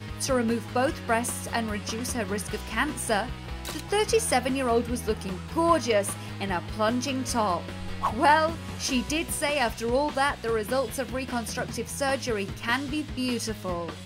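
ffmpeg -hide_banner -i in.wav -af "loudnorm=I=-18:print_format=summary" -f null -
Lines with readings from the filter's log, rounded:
Input Integrated:    -27.6 LUFS
Input True Peak:      -8.0 dBTP
Input LRA:             3.7 LU
Input Threshold:     -37.6 LUFS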